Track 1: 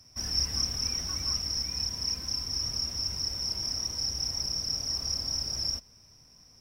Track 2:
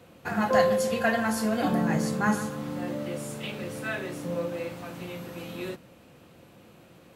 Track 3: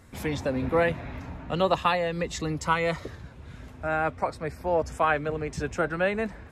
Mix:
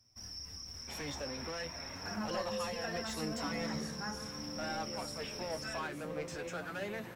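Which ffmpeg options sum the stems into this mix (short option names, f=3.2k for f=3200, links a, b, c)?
-filter_complex "[0:a]alimiter=level_in=0.5dB:limit=-24dB:level=0:latency=1:release=40,volume=-0.5dB,volume=-9dB[a];[1:a]acompressor=threshold=-40dB:ratio=2,adelay=1800,volume=-2dB[b];[2:a]alimiter=limit=-19dB:level=0:latency=1:release=407,asplit=2[c][d];[d]highpass=f=720:p=1,volume=20dB,asoftclip=type=tanh:threshold=-19dB[e];[c][e]amix=inputs=2:normalize=0,lowpass=f=6.3k:p=1,volume=-6dB,adelay=750,volume=-11.5dB[f];[a][b][f]amix=inputs=3:normalize=0,flanger=delay=8.6:depth=5.8:regen=47:speed=0.42:shape=triangular"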